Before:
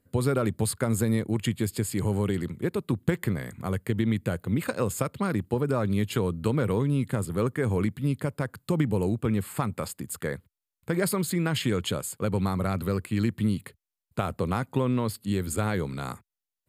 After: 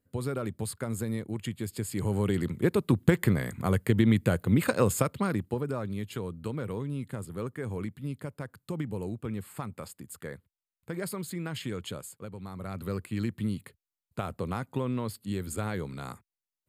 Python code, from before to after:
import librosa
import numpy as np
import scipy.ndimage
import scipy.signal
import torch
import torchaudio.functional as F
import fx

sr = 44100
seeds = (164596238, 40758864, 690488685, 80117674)

y = fx.gain(x, sr, db=fx.line((1.6, -7.5), (2.64, 3.0), (4.89, 3.0), (5.94, -9.0), (12.04, -9.0), (12.37, -16.5), (12.92, -5.5)))